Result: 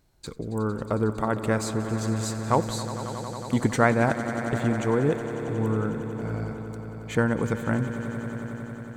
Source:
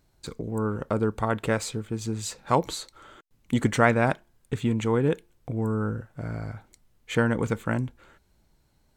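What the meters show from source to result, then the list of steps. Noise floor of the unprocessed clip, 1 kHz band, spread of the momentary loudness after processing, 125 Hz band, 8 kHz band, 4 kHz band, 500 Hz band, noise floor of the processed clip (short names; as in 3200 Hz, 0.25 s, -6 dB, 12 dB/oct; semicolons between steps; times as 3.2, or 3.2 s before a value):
-66 dBFS, +0.5 dB, 10 LU, +1.5 dB, +0.5 dB, -1.5 dB, +1.0 dB, -39 dBFS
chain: dynamic EQ 2900 Hz, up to -6 dB, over -48 dBFS, Q 1.9; swelling echo 91 ms, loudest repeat 5, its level -15 dB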